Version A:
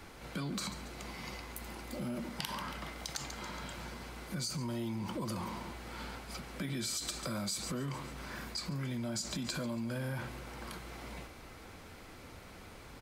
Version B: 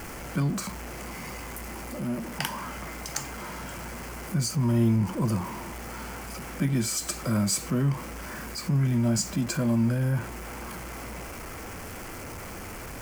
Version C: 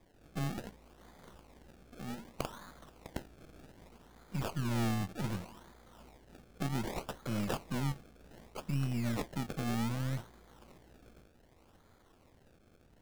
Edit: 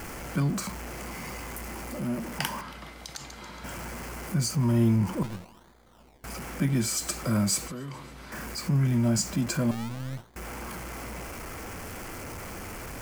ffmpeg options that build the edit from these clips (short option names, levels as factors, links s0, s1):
-filter_complex "[0:a]asplit=2[s0][s1];[2:a]asplit=2[s2][s3];[1:a]asplit=5[s4][s5][s6][s7][s8];[s4]atrim=end=2.612[s9];[s0]atrim=start=2.608:end=3.642[s10];[s5]atrim=start=3.638:end=5.232[s11];[s2]atrim=start=5.228:end=6.242[s12];[s6]atrim=start=6.238:end=7.682[s13];[s1]atrim=start=7.678:end=8.322[s14];[s7]atrim=start=8.318:end=9.712[s15];[s3]atrim=start=9.708:end=10.362[s16];[s8]atrim=start=10.358[s17];[s9][s10]acrossfade=d=0.004:c1=hsin:c2=hsin[s18];[s18][s11]acrossfade=d=0.004:c1=hsin:c2=hsin[s19];[s19][s12]acrossfade=d=0.004:c1=hsin:c2=hsin[s20];[s20][s13]acrossfade=d=0.004:c1=hsin:c2=hsin[s21];[s21][s14]acrossfade=d=0.004:c1=hsin:c2=hsin[s22];[s22][s15]acrossfade=d=0.004:c1=hsin:c2=hsin[s23];[s23][s16]acrossfade=d=0.004:c1=hsin:c2=hsin[s24];[s24][s17]acrossfade=d=0.004:c1=hsin:c2=hsin"